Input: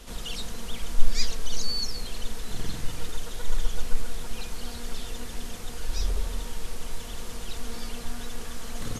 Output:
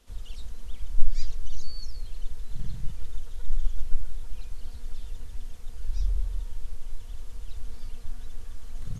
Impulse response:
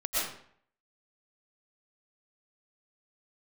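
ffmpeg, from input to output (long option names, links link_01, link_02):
-af "afwtdn=0.0708,volume=1dB"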